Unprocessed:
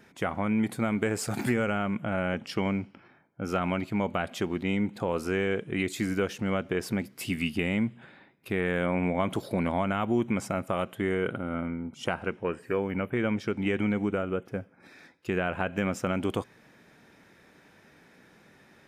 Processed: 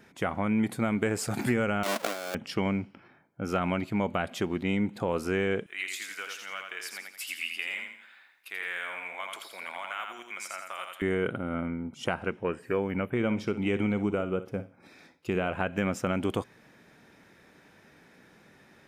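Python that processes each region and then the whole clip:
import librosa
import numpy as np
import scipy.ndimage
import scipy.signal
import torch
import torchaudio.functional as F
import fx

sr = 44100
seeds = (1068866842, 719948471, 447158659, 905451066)

y = fx.chain(x, sr, fx.halfwave_hold(),
    fx.highpass(hz=330.0, slope=24),
    fx.over_compress(threshold_db=-31.0, ratio=-0.5), at=(1.83, 2.35))
y = fx.chain(y, sr, fx.highpass(hz=1500.0, slope=12),
    fx.quant_companded(bits=8),
    fx.echo_feedback(ms=84, feedback_pct=38, wet_db=-4.5), at=(5.66, 11.02))
y = fx.chain(y, sr, fx.peak_eq(hz=1700.0, db=-6.5, octaves=0.36),
    fx.room_flutter(wall_m=10.2, rt60_s=0.26), at=(13.14, 15.53))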